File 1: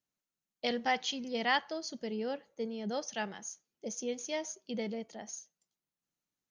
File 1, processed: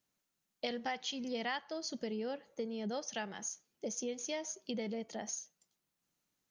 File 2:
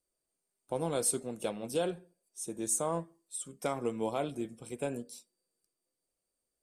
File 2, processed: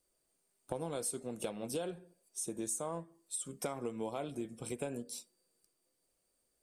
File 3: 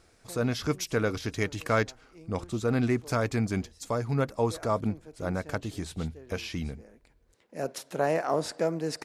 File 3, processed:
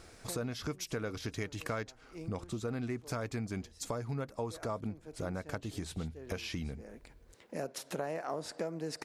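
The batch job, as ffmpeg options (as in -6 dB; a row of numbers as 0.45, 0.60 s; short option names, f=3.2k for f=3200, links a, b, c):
-af "acompressor=threshold=-44dB:ratio=4,volume=6.5dB"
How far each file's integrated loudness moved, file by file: -3.5, -5.5, -9.0 LU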